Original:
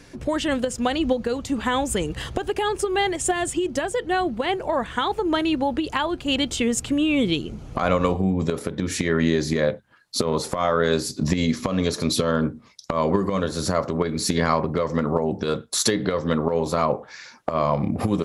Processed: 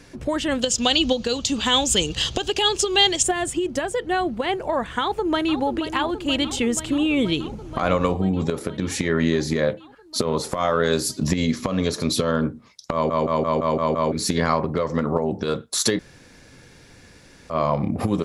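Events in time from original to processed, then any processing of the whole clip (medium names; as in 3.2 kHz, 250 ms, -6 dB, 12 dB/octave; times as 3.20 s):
0.61–3.23 s: high-order bell 4.5 kHz +14 dB
5.00–5.62 s: echo throw 480 ms, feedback 80%, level -10 dB
10.53–11.32 s: treble shelf 7.8 kHz +9.5 dB
12.93 s: stutter in place 0.17 s, 7 plays
15.99–17.50 s: room tone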